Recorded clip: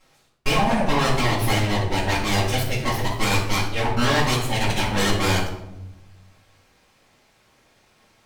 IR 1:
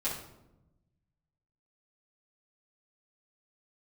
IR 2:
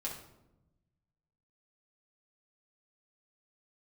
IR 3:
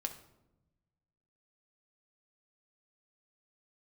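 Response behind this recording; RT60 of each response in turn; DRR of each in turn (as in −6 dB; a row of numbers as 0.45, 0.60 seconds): 1; 0.95 s, 0.95 s, non-exponential decay; −10.5, −4.5, 5.0 decibels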